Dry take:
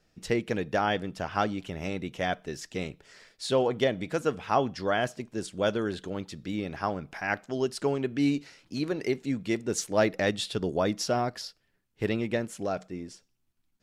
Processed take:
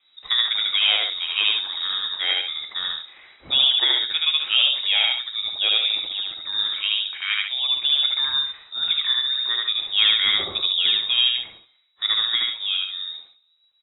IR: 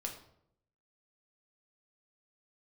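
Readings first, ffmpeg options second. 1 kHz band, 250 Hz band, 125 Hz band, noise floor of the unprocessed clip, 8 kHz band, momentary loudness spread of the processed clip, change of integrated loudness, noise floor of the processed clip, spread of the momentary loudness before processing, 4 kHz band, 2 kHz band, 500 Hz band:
-5.5 dB, under -20 dB, under -15 dB, -72 dBFS, under -40 dB, 9 LU, +10.5 dB, -63 dBFS, 10 LU, +23.5 dB, +8.0 dB, -16.5 dB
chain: -filter_complex "[0:a]aecho=1:1:75.8|139.9:0.891|0.447,asplit=2[s0][s1];[1:a]atrim=start_sample=2205,asetrate=61740,aresample=44100[s2];[s1][s2]afir=irnorm=-1:irlink=0,volume=1.06[s3];[s0][s3]amix=inputs=2:normalize=0,lowpass=f=3300:t=q:w=0.5098,lowpass=f=3300:t=q:w=0.6013,lowpass=f=3300:t=q:w=0.9,lowpass=f=3300:t=q:w=2.563,afreqshift=-3900"

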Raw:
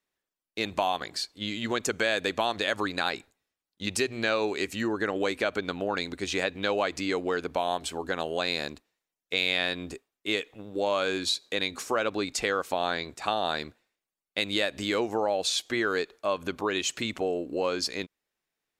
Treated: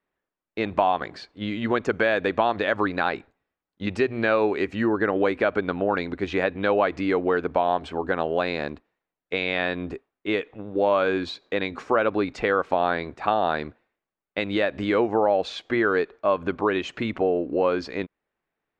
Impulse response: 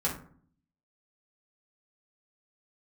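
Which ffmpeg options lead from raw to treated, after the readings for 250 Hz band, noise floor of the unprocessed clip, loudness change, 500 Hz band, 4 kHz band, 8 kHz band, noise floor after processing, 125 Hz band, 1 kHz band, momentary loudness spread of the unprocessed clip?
+6.5 dB, under -85 dBFS, +4.5 dB, +6.5 dB, -6.0 dB, under -15 dB, under -85 dBFS, +6.5 dB, +6.0 dB, 6 LU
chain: -af "lowpass=1800,volume=2.11"

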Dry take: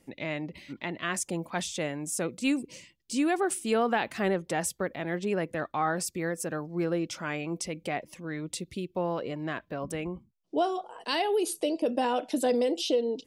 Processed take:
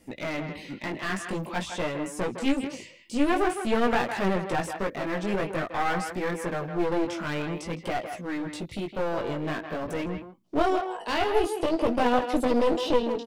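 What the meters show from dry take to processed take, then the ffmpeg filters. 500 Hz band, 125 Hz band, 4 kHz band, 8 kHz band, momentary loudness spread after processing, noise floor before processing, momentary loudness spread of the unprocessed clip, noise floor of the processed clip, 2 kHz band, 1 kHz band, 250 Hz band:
+2.5 dB, +2.5 dB, 0.0 dB, -7.5 dB, 9 LU, -67 dBFS, 9 LU, -47 dBFS, +3.0 dB, +4.0 dB, +3.0 dB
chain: -filter_complex "[0:a]acrossover=split=2900[s0][s1];[s1]acompressor=threshold=0.00447:ratio=4:attack=1:release=60[s2];[s0][s2]amix=inputs=2:normalize=0,flanger=delay=16:depth=5.1:speed=0.49,aeval=exprs='clip(val(0),-1,0.01)':c=same,asplit=2[s3][s4];[s4]adelay=160,highpass=300,lowpass=3400,asoftclip=type=hard:threshold=0.0501,volume=0.447[s5];[s3][s5]amix=inputs=2:normalize=0,volume=2.66"

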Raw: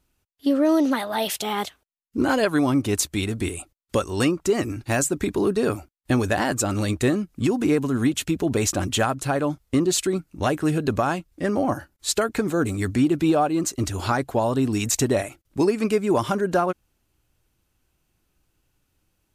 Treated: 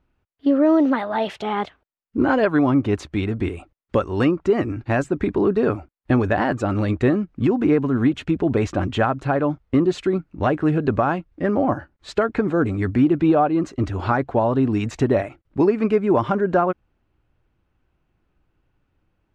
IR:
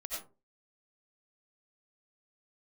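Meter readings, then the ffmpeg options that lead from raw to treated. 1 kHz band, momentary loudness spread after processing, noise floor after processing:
+3.0 dB, 7 LU, -71 dBFS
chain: -af "lowpass=2000,volume=1.41"

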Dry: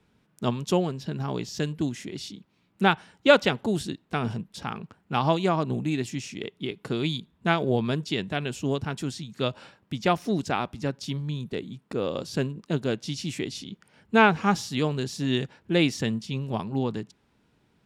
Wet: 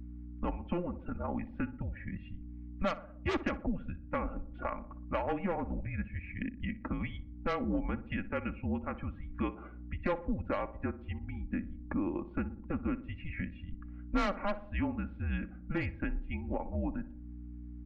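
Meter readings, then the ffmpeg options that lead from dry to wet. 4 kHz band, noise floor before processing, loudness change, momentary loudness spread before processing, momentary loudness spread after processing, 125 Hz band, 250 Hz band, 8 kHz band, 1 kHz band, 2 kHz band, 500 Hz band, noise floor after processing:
-20.0 dB, -68 dBFS, -10.0 dB, 12 LU, 9 LU, -9.5 dB, -8.0 dB, under -25 dB, -11.0 dB, -12.0 dB, -11.5 dB, -49 dBFS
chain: -filter_complex "[0:a]highpass=f=250:t=q:w=0.5412,highpass=f=250:t=q:w=1.307,lowpass=f=2500:t=q:w=0.5176,lowpass=f=2500:t=q:w=0.7071,lowpass=f=2500:t=q:w=1.932,afreqshift=-190,asoftclip=type=hard:threshold=0.112,afftdn=nr=16:nf=-47,acontrast=44,aeval=exprs='val(0)+0.00631*(sin(2*PI*60*n/s)+sin(2*PI*2*60*n/s)/2+sin(2*PI*3*60*n/s)/3+sin(2*PI*4*60*n/s)/4+sin(2*PI*5*60*n/s)/5)':c=same,asplit=2[s0][s1];[s1]adelay=60,lowpass=f=1100:p=1,volume=0.2,asplit=2[s2][s3];[s3]adelay=60,lowpass=f=1100:p=1,volume=0.49,asplit=2[s4][s5];[s5]adelay=60,lowpass=f=1100:p=1,volume=0.49,asplit=2[s6][s7];[s7]adelay=60,lowpass=f=1100:p=1,volume=0.49,asplit=2[s8][s9];[s9]adelay=60,lowpass=f=1100:p=1,volume=0.49[s10];[s0][s2][s4][s6][s8][s10]amix=inputs=6:normalize=0,acompressor=threshold=0.0126:ratio=2.5,aecho=1:1:3.6:0.6"

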